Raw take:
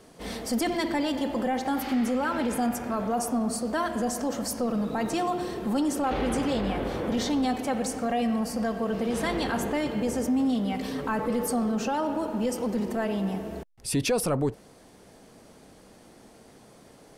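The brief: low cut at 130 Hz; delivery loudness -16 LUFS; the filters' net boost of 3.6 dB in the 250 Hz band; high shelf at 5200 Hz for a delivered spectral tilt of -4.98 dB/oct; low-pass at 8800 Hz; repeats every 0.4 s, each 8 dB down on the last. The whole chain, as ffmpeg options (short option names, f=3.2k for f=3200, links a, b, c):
-af "highpass=130,lowpass=8.8k,equalizer=f=250:t=o:g=4.5,highshelf=f=5.2k:g=4,aecho=1:1:400|800|1200|1600|2000:0.398|0.159|0.0637|0.0255|0.0102,volume=9dB"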